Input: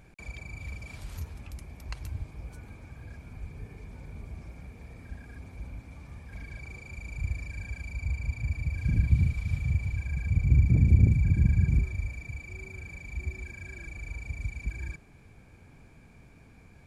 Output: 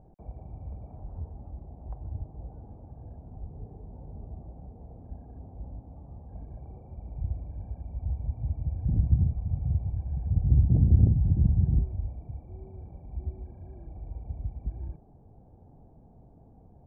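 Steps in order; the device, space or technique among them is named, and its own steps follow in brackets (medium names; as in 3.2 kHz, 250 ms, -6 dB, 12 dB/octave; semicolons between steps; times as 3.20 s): under water (low-pass 730 Hz 24 dB/octave; peaking EQ 780 Hz +9 dB 0.55 oct)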